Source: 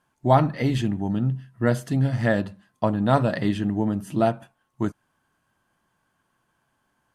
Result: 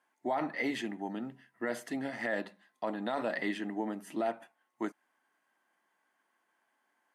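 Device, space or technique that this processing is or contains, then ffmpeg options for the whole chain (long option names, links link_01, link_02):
laptop speaker: -filter_complex "[0:a]highpass=frequency=260:width=0.5412,highpass=frequency=260:width=1.3066,equalizer=frequency=790:width_type=o:width=0.54:gain=4.5,equalizer=frequency=2000:width_type=o:width=0.41:gain=11,alimiter=limit=-15.5dB:level=0:latency=1:release=22,asettb=1/sr,asplit=3[link_01][link_02][link_03];[link_01]atrim=end=2.424[link_04];[link_02]atrim=start=2.42:end=3.24,asetpts=PTS-STARTPTS,afade=type=in:duration=0.004:curve=qsin,afade=type=out:start_time=0.816:duration=0.004:curve=qsin,equalizer=frequency=3800:width_type=o:width=0.37:gain=6[link_05];[link_03]atrim=start=3.236[link_06];[link_04][link_05]acrossfade=duration=0.004:curve1=hsin:curve2=qsin[link_07];[link_07][link_06]acrossfade=duration=0.004:curve1=qsin:curve2=hsin,volume=-7.5dB"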